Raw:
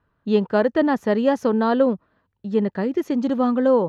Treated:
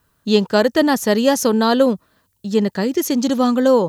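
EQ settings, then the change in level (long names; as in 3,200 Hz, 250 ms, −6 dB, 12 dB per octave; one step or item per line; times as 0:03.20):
bass and treble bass +1 dB, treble +15 dB
high-shelf EQ 3,700 Hz +11 dB
+3.0 dB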